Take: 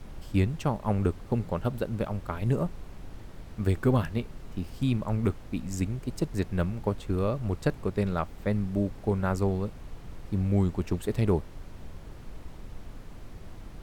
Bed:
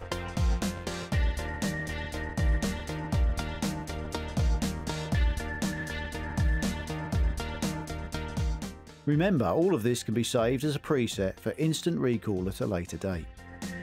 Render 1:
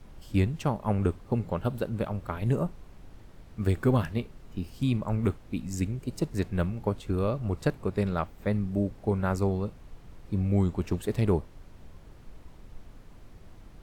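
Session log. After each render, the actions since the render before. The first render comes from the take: noise print and reduce 6 dB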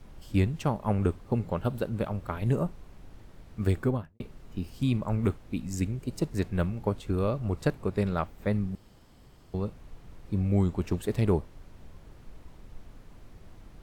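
3.70–4.20 s: studio fade out; 8.75–9.54 s: room tone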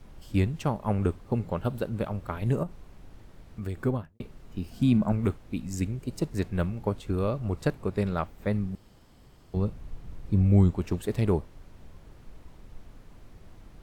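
2.63–3.82 s: compression 2.5:1, threshold -33 dBFS; 4.71–5.12 s: small resonant body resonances 210/680/1500 Hz, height 11 dB; 9.56–10.71 s: bass shelf 220 Hz +7.5 dB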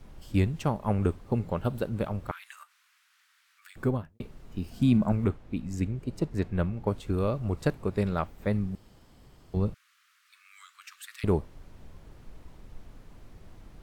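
2.31–3.76 s: steep high-pass 1.3 kHz; 5.24–6.87 s: treble shelf 4.6 kHz -10.5 dB; 9.74–11.24 s: steep high-pass 1.2 kHz 72 dB/octave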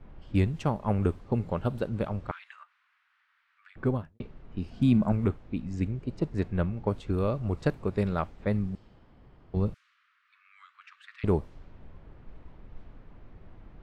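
level-controlled noise filter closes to 2.1 kHz, open at -24 dBFS; treble shelf 6.5 kHz -7.5 dB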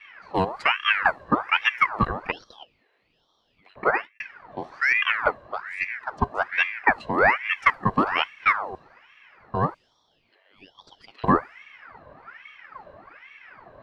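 small resonant body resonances 500/990/3400 Hz, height 18 dB, ringing for 25 ms; ring modulator with a swept carrier 1.4 kHz, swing 60%, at 1.2 Hz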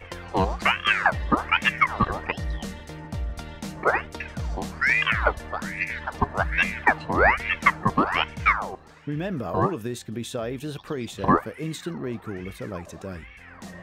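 add bed -4 dB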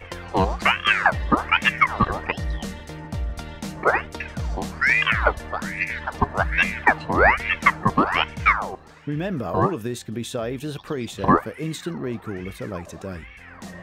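trim +2.5 dB; peak limiter -2 dBFS, peak gain reduction 1 dB

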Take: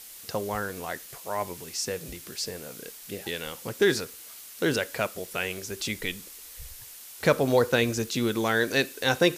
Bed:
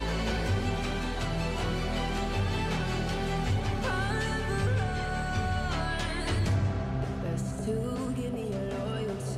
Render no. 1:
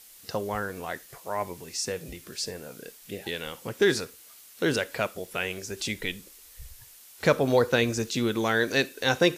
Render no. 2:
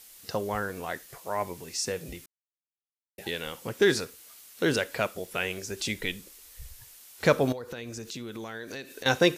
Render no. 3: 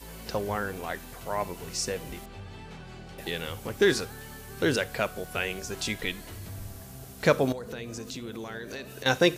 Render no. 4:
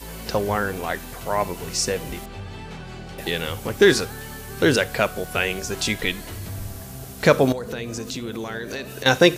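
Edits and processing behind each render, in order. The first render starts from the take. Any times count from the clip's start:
noise print and reduce 6 dB
2.26–3.18 s: mute; 7.52–9.06 s: compression 8:1, threshold -35 dBFS
add bed -14 dB
trim +7.5 dB; peak limiter -3 dBFS, peak gain reduction 1.5 dB

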